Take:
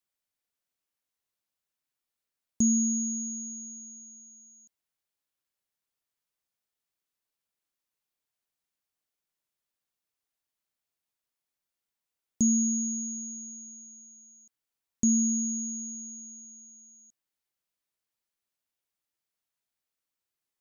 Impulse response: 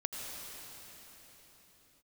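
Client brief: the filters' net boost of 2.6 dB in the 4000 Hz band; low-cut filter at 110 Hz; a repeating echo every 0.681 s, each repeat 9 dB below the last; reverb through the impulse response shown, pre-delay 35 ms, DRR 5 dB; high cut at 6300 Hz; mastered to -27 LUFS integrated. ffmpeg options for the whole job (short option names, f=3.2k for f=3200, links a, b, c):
-filter_complex "[0:a]highpass=110,lowpass=6.3k,equalizer=f=4k:t=o:g=5,aecho=1:1:681|1362|2043|2724:0.355|0.124|0.0435|0.0152,asplit=2[a][b];[1:a]atrim=start_sample=2205,adelay=35[c];[b][c]afir=irnorm=-1:irlink=0,volume=-7.5dB[d];[a][d]amix=inputs=2:normalize=0,volume=1dB"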